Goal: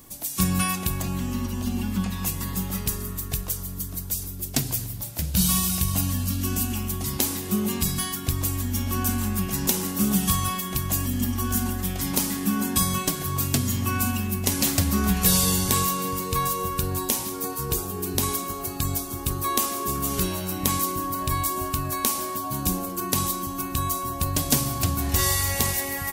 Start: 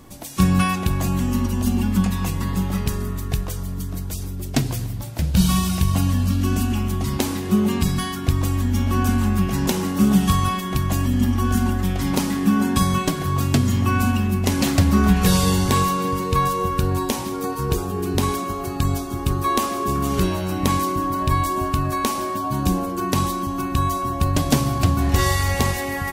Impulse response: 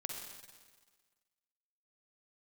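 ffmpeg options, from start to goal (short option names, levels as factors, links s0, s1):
-filter_complex "[0:a]asplit=2[s0][s1];[1:a]atrim=start_sample=2205[s2];[s1][s2]afir=irnorm=-1:irlink=0,volume=0.141[s3];[s0][s3]amix=inputs=2:normalize=0,asettb=1/sr,asplit=3[s4][s5][s6];[s4]atrim=end=1.024[s7];[s5]atrim=start=1.02:end=2.23,asetpts=PTS-STARTPTS,afade=t=in:d=0.004:c=qsin,afade=t=out:st=1.206:d=0.004:c=qsin,acrossover=split=4900[s8][s9];[s9]acompressor=threshold=0.00398:ratio=4:attack=1:release=60[s10];[s8][s10]amix=inputs=2:normalize=0[s11];[s6]atrim=start=2.226[s12];[s7][s11]acrossfade=d=0.004:c1=hsin:c2=qsin[s13];[s13][s12]acrossfade=d=0.004:c1=qsin:c2=hsin,aemphasis=mode=production:type=75kf,volume=0.398"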